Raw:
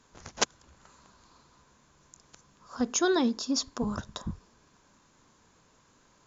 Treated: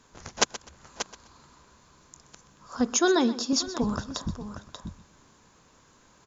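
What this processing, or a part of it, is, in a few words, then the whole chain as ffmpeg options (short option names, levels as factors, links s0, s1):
ducked delay: -filter_complex "[0:a]asettb=1/sr,asplit=3[s0][s1][s2];[s0]atrim=end=2.954[s3];[s1]atrim=start=2.95:end=3.53,asetpts=PTS-STARTPTS,afade=t=in:d=0.004:c=qsin,afade=t=out:st=0.576:d=0.004:c=qsin,highpass=200[s4];[s2]atrim=start=3.526[s5];[s3][s4]acrossfade=d=0.004:c1=hsin:c2=qsin[s6];[s6][s5]acrossfade=d=0.004:c1=qsin:c2=hsin,asplit=3[s7][s8][s9];[s8]adelay=585,volume=0.447[s10];[s9]apad=whole_len=302118[s11];[s10][s11]sidechaincompress=threshold=0.0158:ratio=8:attack=16:release=608[s12];[s7][s12]amix=inputs=2:normalize=0,aecho=1:1:126|252:0.158|0.0365,volume=1.5"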